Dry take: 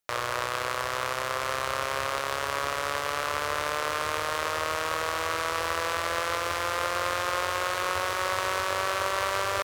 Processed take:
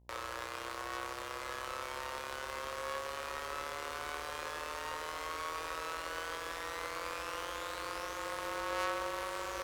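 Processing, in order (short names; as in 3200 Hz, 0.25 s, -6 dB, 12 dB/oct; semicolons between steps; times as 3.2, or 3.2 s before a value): resonator 190 Hz, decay 0.19 s, harmonics all, mix 70%; frequency shift -35 Hz; buzz 60 Hz, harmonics 17, -59 dBFS -8 dB/oct; gain -4.5 dB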